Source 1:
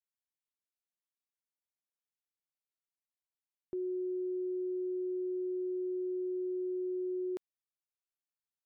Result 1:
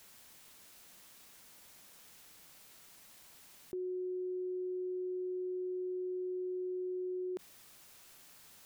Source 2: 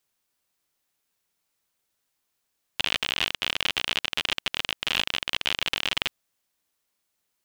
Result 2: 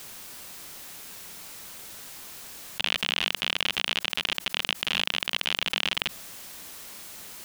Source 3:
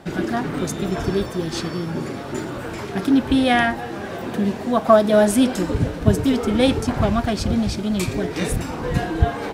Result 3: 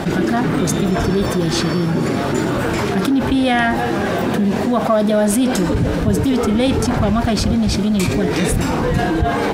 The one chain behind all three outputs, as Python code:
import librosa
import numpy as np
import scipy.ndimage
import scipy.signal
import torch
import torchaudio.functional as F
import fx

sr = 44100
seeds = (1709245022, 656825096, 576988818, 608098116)

p1 = fx.peak_eq(x, sr, hz=190.0, db=3.0, octaves=0.66)
p2 = np.clip(p1, -10.0 ** (-16.5 / 20.0), 10.0 ** (-16.5 / 20.0))
p3 = p1 + (p2 * librosa.db_to_amplitude(-11.0))
p4 = fx.env_flatten(p3, sr, amount_pct=70)
y = p4 * librosa.db_to_amplitude(-5.0)